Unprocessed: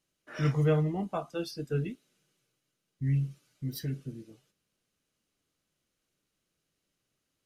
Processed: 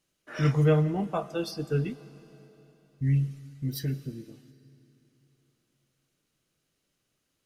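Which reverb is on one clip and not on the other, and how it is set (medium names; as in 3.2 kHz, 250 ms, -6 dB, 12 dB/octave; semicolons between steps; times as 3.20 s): algorithmic reverb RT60 3.5 s, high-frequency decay 0.9×, pre-delay 75 ms, DRR 17 dB; trim +3.5 dB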